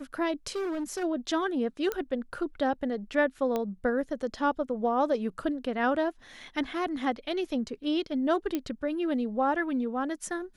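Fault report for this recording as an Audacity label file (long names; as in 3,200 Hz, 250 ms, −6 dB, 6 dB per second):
0.550000	1.040000	clipping −29 dBFS
1.920000	1.920000	click −17 dBFS
3.560000	3.560000	click −17 dBFS
8.550000	8.550000	click −16 dBFS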